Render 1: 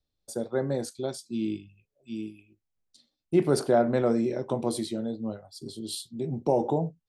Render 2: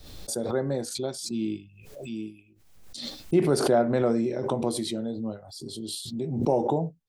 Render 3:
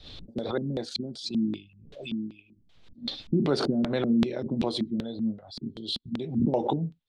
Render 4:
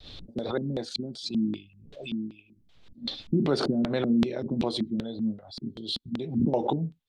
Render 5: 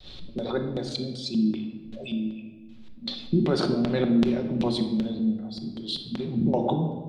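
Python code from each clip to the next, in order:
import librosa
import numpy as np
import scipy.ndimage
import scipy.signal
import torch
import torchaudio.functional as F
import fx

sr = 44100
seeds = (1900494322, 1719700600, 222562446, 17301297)

y1 = fx.pre_swell(x, sr, db_per_s=54.0)
y2 = fx.filter_lfo_lowpass(y1, sr, shape='square', hz=2.6, low_hz=230.0, high_hz=3600.0, q=3.1)
y2 = fx.hpss(y2, sr, part='harmonic', gain_db=-5)
y3 = fx.vibrato(y2, sr, rate_hz=0.53, depth_cents=14.0)
y4 = fx.room_shoebox(y3, sr, seeds[0], volume_m3=1100.0, walls='mixed', distance_m=1.0)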